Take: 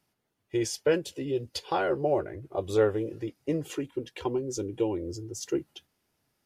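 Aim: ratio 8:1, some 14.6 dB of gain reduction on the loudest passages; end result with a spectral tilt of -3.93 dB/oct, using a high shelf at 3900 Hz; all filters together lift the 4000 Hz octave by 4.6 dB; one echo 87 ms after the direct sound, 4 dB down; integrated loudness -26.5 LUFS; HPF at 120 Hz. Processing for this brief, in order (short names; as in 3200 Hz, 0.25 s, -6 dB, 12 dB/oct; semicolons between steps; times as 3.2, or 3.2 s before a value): HPF 120 Hz; high shelf 3900 Hz -3.5 dB; bell 4000 Hz +8.5 dB; compressor 8:1, threshold -34 dBFS; echo 87 ms -4 dB; gain +11.5 dB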